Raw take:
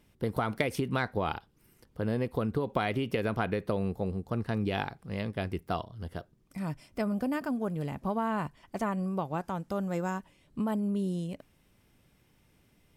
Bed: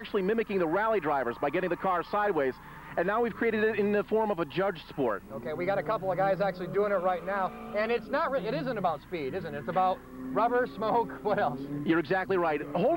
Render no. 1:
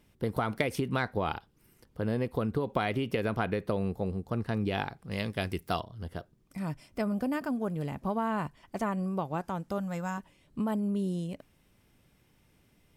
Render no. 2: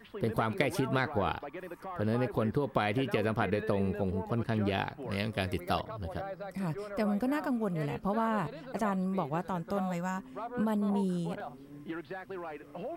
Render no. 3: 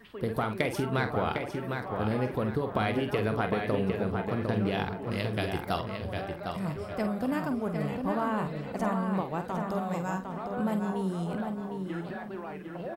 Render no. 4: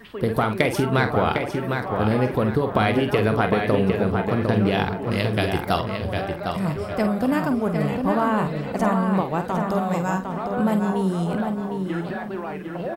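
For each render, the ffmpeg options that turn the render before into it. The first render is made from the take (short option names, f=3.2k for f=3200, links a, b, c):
-filter_complex "[0:a]asettb=1/sr,asplit=3[a][b][c];[a]atrim=end=5.114[d];[b]atrim=start=5.11:end=5.8,asetpts=PTS-STARTPTS,afade=t=in:d=0.004:c=qsin,afade=t=out:st=0.686:d=0.004:c=qsin,highshelf=f=2.5k:g=10[e];[c]atrim=start=5.796[f];[d][e]acrossfade=d=0.004:c1=hsin:c2=qsin[g];[g][f]acrossfade=d=0.004:c1=qsin:c2=hsin,asettb=1/sr,asplit=3[h][i][j];[h]atrim=end=9.784[k];[i]atrim=start=9.78:end=10.18,asetpts=PTS-STARTPTS,afade=t=in:d=0.004:c=qsin,afade=t=out:st=0.396:d=0.004:c=qsin,equalizer=f=390:w=2.3:g=-14.5[l];[j]atrim=start=10.176[m];[k][l]acrossfade=d=0.004:c1=hsin:c2=qsin[n];[n][m]acrossfade=d=0.004:c1=qsin:c2=hsin"
-filter_complex "[1:a]volume=-13.5dB[a];[0:a][a]amix=inputs=2:normalize=0"
-filter_complex "[0:a]asplit=2[a][b];[b]adelay=47,volume=-9dB[c];[a][c]amix=inputs=2:normalize=0,asplit=2[d][e];[e]adelay=755,lowpass=f=4.3k:p=1,volume=-5dB,asplit=2[f][g];[g]adelay=755,lowpass=f=4.3k:p=1,volume=0.35,asplit=2[h][i];[i]adelay=755,lowpass=f=4.3k:p=1,volume=0.35,asplit=2[j][k];[k]adelay=755,lowpass=f=4.3k:p=1,volume=0.35[l];[f][h][j][l]amix=inputs=4:normalize=0[m];[d][m]amix=inputs=2:normalize=0"
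-af "volume=8.5dB"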